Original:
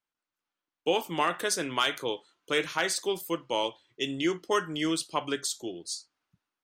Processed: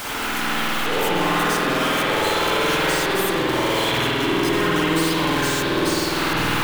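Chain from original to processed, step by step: infinite clipping; spring tank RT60 3.2 s, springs 49 ms, chirp 60 ms, DRR -9.5 dB; gain +3 dB

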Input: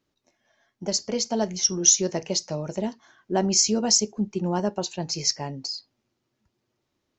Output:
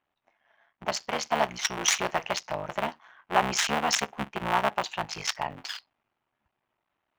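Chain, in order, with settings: cycle switcher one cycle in 3, muted; band shelf 1500 Hz +15 dB 2.7 oct; mismatched tape noise reduction decoder only; gain -8 dB

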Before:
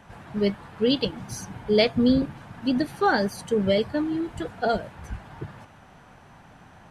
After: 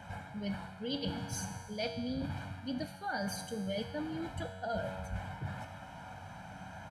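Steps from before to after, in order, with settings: HPF 51 Hz; comb 1.3 ms, depth 73%; reverse; compressor 6:1, threshold -35 dBFS, peak gain reduction 20.5 dB; reverse; resonator 94 Hz, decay 1.5 s, harmonics all, mix 80%; gain +11.5 dB

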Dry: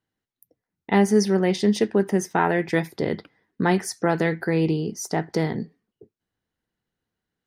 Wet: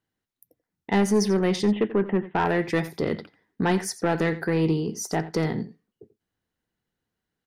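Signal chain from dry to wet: 1.63–2.45 steep low-pass 3100 Hz 72 dB/oct; soft clip -14 dBFS, distortion -14 dB; echo 87 ms -16 dB

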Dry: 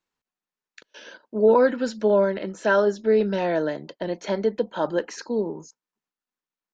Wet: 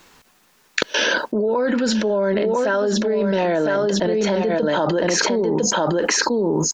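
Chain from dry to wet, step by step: echo 1.004 s -8 dB; fast leveller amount 100%; gain -5.5 dB

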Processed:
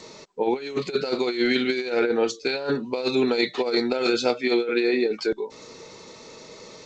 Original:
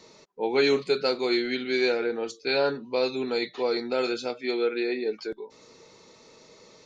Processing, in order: negative-ratio compressor -28 dBFS, ratio -0.5; gain +6 dB; G.722 64 kbps 16000 Hz

